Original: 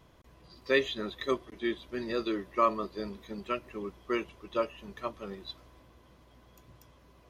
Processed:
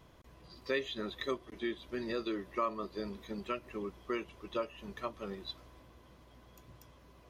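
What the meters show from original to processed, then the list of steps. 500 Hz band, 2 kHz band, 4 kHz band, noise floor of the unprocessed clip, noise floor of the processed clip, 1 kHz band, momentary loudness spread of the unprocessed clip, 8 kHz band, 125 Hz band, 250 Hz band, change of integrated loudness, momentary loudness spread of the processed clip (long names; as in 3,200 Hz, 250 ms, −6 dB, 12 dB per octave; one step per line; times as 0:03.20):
−5.5 dB, −6.5 dB, −4.0 dB, −60 dBFS, −60 dBFS, −7.0 dB, 14 LU, can't be measured, −2.5 dB, −4.0 dB, −6.0 dB, 22 LU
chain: downward compressor 2 to 1, threshold −36 dBFS, peak gain reduction 9 dB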